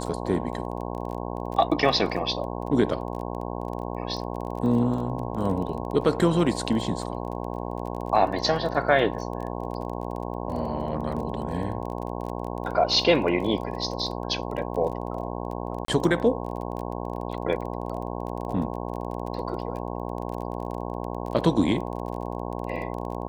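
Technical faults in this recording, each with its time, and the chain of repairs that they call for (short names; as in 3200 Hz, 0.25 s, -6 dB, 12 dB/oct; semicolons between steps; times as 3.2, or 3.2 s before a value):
buzz 60 Hz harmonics 18 -32 dBFS
crackle 25/s -33 dBFS
15.85–15.88 gap 33 ms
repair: de-click; de-hum 60 Hz, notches 18; interpolate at 15.85, 33 ms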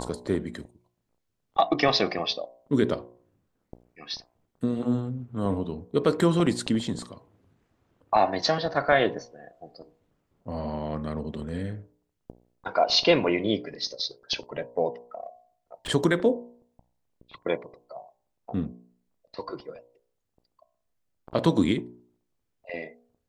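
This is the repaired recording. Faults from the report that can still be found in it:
none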